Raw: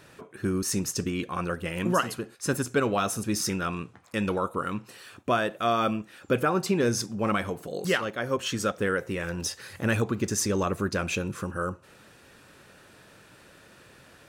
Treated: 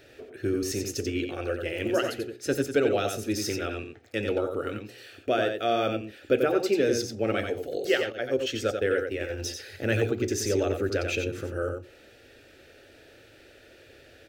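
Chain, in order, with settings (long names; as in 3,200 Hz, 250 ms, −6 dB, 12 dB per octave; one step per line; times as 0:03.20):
mains-hum notches 60/120/180/240/300/360/420/480/540 Hz
0:08.03–0:09.30: noise gate −31 dBFS, range −11 dB
parametric band 9,500 Hz −13.5 dB 1.3 octaves
phaser with its sweep stopped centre 430 Hz, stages 4
single-tap delay 90 ms −6 dB
level +4 dB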